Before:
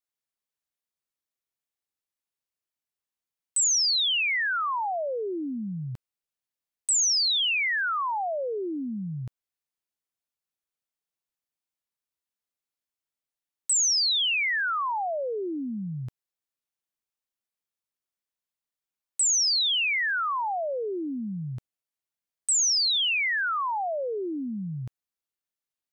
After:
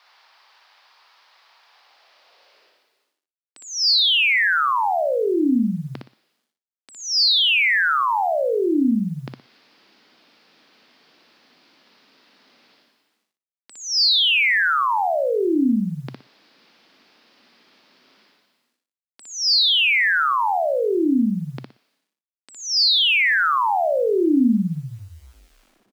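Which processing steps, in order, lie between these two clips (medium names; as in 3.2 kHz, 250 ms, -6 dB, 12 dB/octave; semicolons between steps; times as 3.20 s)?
tape stop on the ending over 2.91 s; reverse; upward compressor, threshold -33 dBFS; reverse; elliptic low-pass 4.9 kHz, stop band 60 dB; companded quantiser 8-bit; high-pass sweep 890 Hz -> 240 Hz, 1.67–3.75 s; on a send: feedback delay 60 ms, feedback 23%, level -4 dB; on the sum: trim +6.5 dB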